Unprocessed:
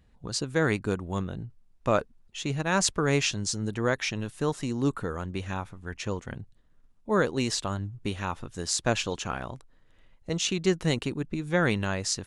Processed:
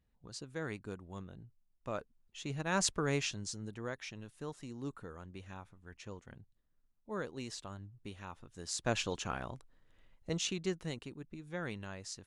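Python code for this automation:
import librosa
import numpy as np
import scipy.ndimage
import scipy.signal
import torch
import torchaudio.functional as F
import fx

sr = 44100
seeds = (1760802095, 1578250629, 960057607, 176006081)

y = fx.gain(x, sr, db=fx.line((1.92, -15.5), (2.85, -6.5), (3.96, -15.5), (8.46, -15.5), (8.99, -6.0), (10.32, -6.0), (10.99, -16.0)))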